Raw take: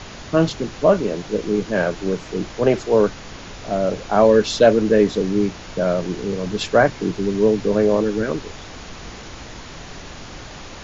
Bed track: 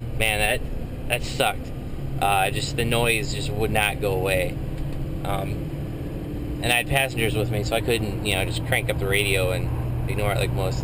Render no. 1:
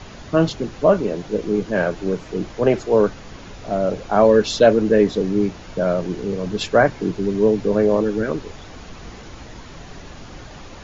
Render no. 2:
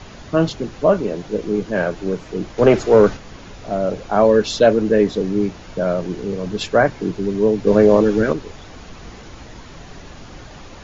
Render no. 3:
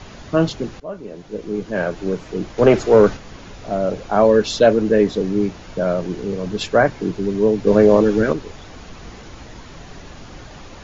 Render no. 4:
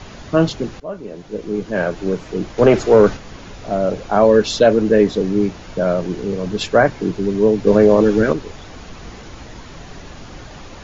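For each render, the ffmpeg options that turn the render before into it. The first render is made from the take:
-af "afftdn=nr=6:nf=-37"
-filter_complex "[0:a]asettb=1/sr,asplit=3[s0][s1][s2];[s0]atrim=end=2.584[s3];[s1]atrim=start=2.58:end=3.17,asetpts=PTS-STARTPTS,afade=t=in:d=0.004:c=qsin,afade=t=out:st=0.586:d=0.004:c=qsin,acontrast=56[s4];[s2]atrim=start=3.166[s5];[s3][s4]acrossfade=d=0.004:c1=hsin:c2=qsin[s6];[s6][s5]acrossfade=d=0.004:c1=qsin:c2=hsin,asplit=3[s7][s8][s9];[s7]atrim=end=7.672[s10];[s8]atrim=start=7.668:end=8.332,asetpts=PTS-STARTPTS,volume=1.78[s11];[s9]atrim=start=8.328[s12];[s10][s11]acrossfade=d=0.004:c1=hsin:c2=hsin[s13];[s13][s12]acrossfade=d=0.004:c1=hsin:c2=hsin"
-filter_complex "[0:a]asplit=2[s0][s1];[s0]atrim=end=0.8,asetpts=PTS-STARTPTS,afade=t=out:st=0.796:d=0.004:c=hsin:silence=0.0891251[s2];[s1]atrim=start=0.8,asetpts=PTS-STARTPTS,afade=t=in:d=1.25:silence=0.0891251[s3];[s2][s3]concat=n=2:v=0:a=1"
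-af "volume=1.26,alimiter=limit=0.794:level=0:latency=1"

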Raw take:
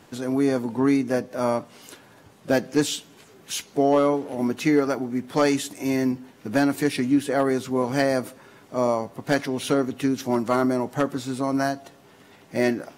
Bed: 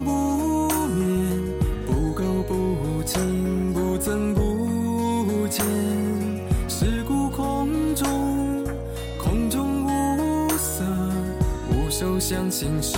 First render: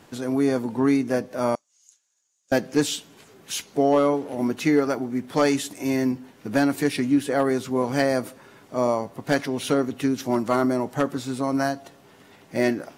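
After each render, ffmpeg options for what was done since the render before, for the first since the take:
-filter_complex "[0:a]asettb=1/sr,asplit=3[s0][s1][s2];[s0]atrim=end=1.554[s3];[s1]atrim=start=1.55:end=2.52,asetpts=PTS-STARTPTS,afade=t=in:d=0.004:c=qsin,afade=t=out:st=0.966:d=0.004:c=qsin,bandpass=f=6700:t=q:w=8.1[s4];[s2]atrim=start=2.516[s5];[s3][s4]acrossfade=d=0.004:c1=hsin:c2=qsin[s6];[s6][s5]acrossfade=d=0.004:c1=qsin:c2=hsin"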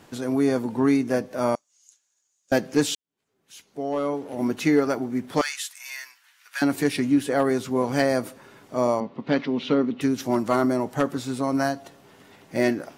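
-filter_complex "[0:a]asettb=1/sr,asplit=3[s0][s1][s2];[s0]atrim=end=5.414[s3];[s1]atrim=start=5.41:end=6.62,asetpts=PTS-STARTPTS,afade=t=in:d=0.004:c=qsin,afade=t=out:st=1.206:d=0.004:c=qsin,highpass=f=1400:w=0.5412,highpass=f=1400:w=1.3066[s4];[s2]atrim=start=6.616[s5];[s3][s4]acrossfade=d=0.004:c1=hsin:c2=qsin[s6];[s6][s5]acrossfade=d=0.004:c1=qsin:c2=hsin,asettb=1/sr,asplit=3[s7][s8][s9];[s7]atrim=end=9.004[s10];[s8]atrim=start=9:end=10.01,asetpts=PTS-STARTPTS,afade=t=in:d=0.004:c=qsin,afade=t=out:st=1.006:d=0.004:c=qsin,highpass=110,equalizer=f=110:t=q:w=4:g=-5,equalizer=f=230:t=q:w=4:g=7,equalizer=f=700:t=q:w=4:g=-6,equalizer=f=1600:t=q:w=4:g=-6,lowpass=f=4000:w=0.5412,lowpass=f=4000:w=1.3066[s11];[s9]atrim=start=10.006[s12];[s10][s11]acrossfade=d=0.004:c1=hsin:c2=qsin[s13];[s13][s12]acrossfade=d=0.004:c1=qsin:c2=hsin,asplit=2[s14][s15];[s14]atrim=end=2.95,asetpts=PTS-STARTPTS,afade=t=out:st=2.946:d=0.004:c=hsin[s16];[s15]atrim=start=2.95,asetpts=PTS-STARTPTS,afade=t=in:d=1.56:c=qua[s17];[s16][s17]concat=n=2:v=0:a=1"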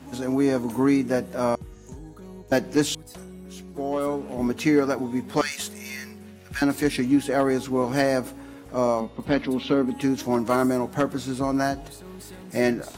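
-filter_complex "[1:a]volume=0.119[s0];[0:a][s0]amix=inputs=2:normalize=0"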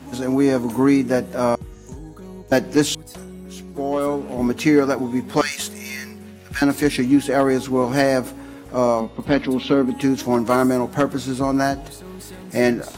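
-af "volume=1.68"

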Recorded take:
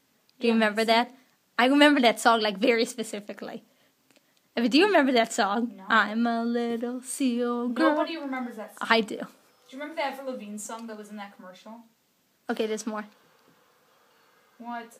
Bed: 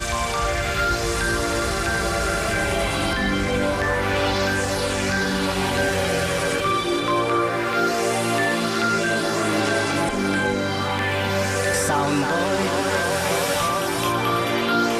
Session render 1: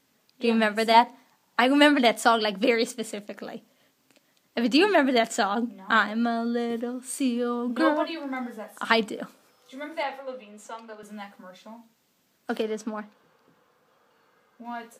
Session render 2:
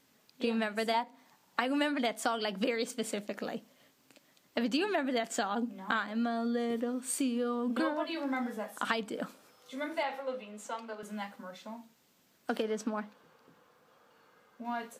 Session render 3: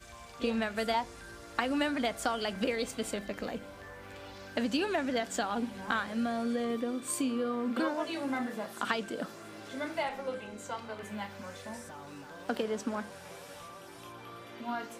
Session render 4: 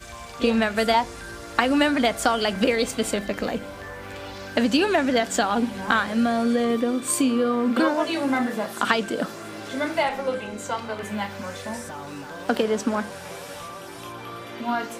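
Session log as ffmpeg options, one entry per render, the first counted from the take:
-filter_complex "[0:a]asettb=1/sr,asplit=3[s0][s1][s2];[s0]atrim=end=0.944[s3];[s1]atrim=start=0.94:end=1.6,asetpts=PTS-STARTPTS,afade=t=in:d=0.004:c=qsin,afade=t=out:st=0.656:d=0.004:c=qsin,equalizer=f=910:w=3.5:g=11.5[s4];[s2]atrim=start=1.596[s5];[s3][s4]acrossfade=d=0.004:c1=hsin:c2=qsin[s6];[s6][s5]acrossfade=d=0.004:c1=qsin:c2=hsin,asettb=1/sr,asplit=3[s7][s8][s9];[s7]atrim=end=10.034[s10];[s8]atrim=start=10.03:end=11.03,asetpts=PTS-STARTPTS,afade=t=in:d=0.004:c=qsin,afade=t=out:st=0.996:d=0.004:c=qsin,acrossover=split=350 4400:gain=0.2 1 0.2[s11][s12][s13];[s11][s12][s13]amix=inputs=3:normalize=0[s14];[s9]atrim=start=11.026[s15];[s10][s14]acrossfade=d=0.004:c1=hsin:c2=qsin[s16];[s16][s15]acrossfade=d=0.004:c1=qsin:c2=hsin,asettb=1/sr,asplit=3[s17][s18][s19];[s17]atrim=end=12.624[s20];[s18]atrim=start=12.62:end=14.65,asetpts=PTS-STARTPTS,afade=t=in:d=0.004:c=qsin,afade=t=out:st=2.026:d=0.004:c=qsin,highshelf=f=2300:g=-8[s21];[s19]atrim=start=14.646[s22];[s20][s21]acrossfade=d=0.004:c1=hsin:c2=qsin[s23];[s23][s22]acrossfade=d=0.004:c1=qsin:c2=hsin"
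-af "acompressor=threshold=0.0355:ratio=5"
-filter_complex "[1:a]volume=0.0501[s0];[0:a][s0]amix=inputs=2:normalize=0"
-af "volume=3.35"

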